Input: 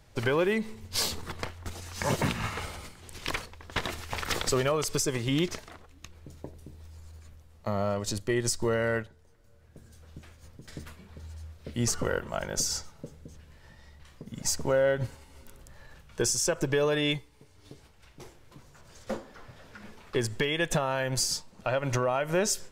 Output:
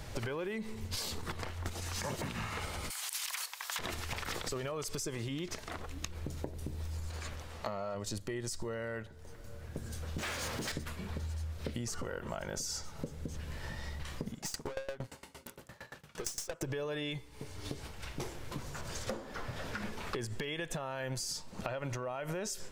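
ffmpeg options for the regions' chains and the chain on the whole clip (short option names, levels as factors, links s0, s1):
-filter_complex "[0:a]asettb=1/sr,asplit=3[s0][s1][s2];[s0]atrim=end=2.904[s3];[s1]atrim=start=2.9:end=3.79,asetpts=PTS-STARTPTS,afade=t=in:d=0.004:c=qsin,afade=t=out:st=0.886:d=0.004:c=qsin,highpass=f=820:w=0.5412,highpass=f=820:w=1.3066,aemphasis=mode=production:type=75kf[s4];[s2]atrim=start=3.786[s5];[s3][s4]acrossfade=d=0.004:c1=hsin:c2=qsin[s6];[s6][s5]acrossfade=d=0.004:c1=qsin:c2=hsin,asettb=1/sr,asplit=3[s7][s8][s9];[s7]atrim=end=7.104[s10];[s8]atrim=start=7.1:end=7.95,asetpts=PTS-STARTPTS,afade=t=in:d=0.004:c=qsin,afade=t=out:st=0.846:d=0.004:c=qsin,asplit=2[s11][s12];[s12]highpass=f=720:p=1,volume=3.98,asoftclip=type=tanh:threshold=0.141[s13];[s11][s13]amix=inputs=2:normalize=0,lowpass=f=5300:p=1,volume=0.501,highshelf=f=8400:g=-4.5[s14];[s9]atrim=start=7.946[s15];[s10][s14]acrossfade=d=0.004:c1=hsin:c2=qsin[s16];[s16][s15]acrossfade=d=0.004:c1=qsin:c2=hsin,asettb=1/sr,asplit=3[s17][s18][s19];[s17]atrim=end=10.184[s20];[s18]atrim=start=10.18:end=10.72,asetpts=PTS-STARTPTS,afade=t=in:d=0.004:c=qsin,afade=t=out:st=0.536:d=0.004:c=qsin,asplit=2[s21][s22];[s22]highpass=f=720:p=1,volume=28.2,asoftclip=type=tanh:threshold=0.0211[s23];[s21][s23]amix=inputs=2:normalize=0,lowpass=f=5700:p=1,volume=0.501,acrusher=bits=6:mode=log:mix=0:aa=0.000001[s24];[s19]atrim=start=10.716[s25];[s20][s24]acrossfade=d=0.004:c1=hsin:c2=qsin[s26];[s26][s25]acrossfade=d=0.004:c1=qsin:c2=hsin,asettb=1/sr,asplit=3[s27][s28][s29];[s27]atrim=end=14.314[s30];[s28]atrim=start=14.31:end=16.63,asetpts=PTS-STARTPTS,afade=t=in:d=0.004:c=qsin,afade=t=out:st=2.316:d=0.004:c=qsin,highpass=150,aeval=exprs='(tanh(50.1*val(0)+0.5)-tanh(0.5))/50.1':c=same,aeval=exprs='val(0)*pow(10,-24*if(lt(mod(8.7*n/s,1),2*abs(8.7)/1000),1-mod(8.7*n/s,1)/(2*abs(8.7)/1000),(mod(8.7*n/s,1)-2*abs(8.7)/1000)/(1-2*abs(8.7)/1000))/20)':c=same[s31];[s29]atrim=start=16.626[s32];[s30][s31]acrossfade=d=0.004:c1=hsin:c2=qsin[s33];[s33][s32]acrossfade=d=0.004:c1=qsin:c2=hsin,alimiter=level_in=1.12:limit=0.0631:level=0:latency=1:release=75,volume=0.891,acompressor=threshold=0.00398:ratio=10,volume=4.22"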